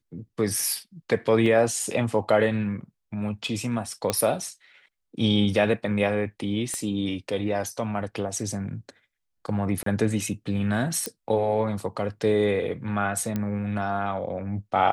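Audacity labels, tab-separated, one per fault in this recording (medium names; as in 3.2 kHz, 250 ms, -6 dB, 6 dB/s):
1.460000	1.460000	dropout 3.5 ms
4.100000	4.100000	pop -9 dBFS
6.740000	6.740000	pop -19 dBFS
9.830000	9.860000	dropout 33 ms
11.060000	11.060000	pop -12 dBFS
13.360000	13.360000	pop -15 dBFS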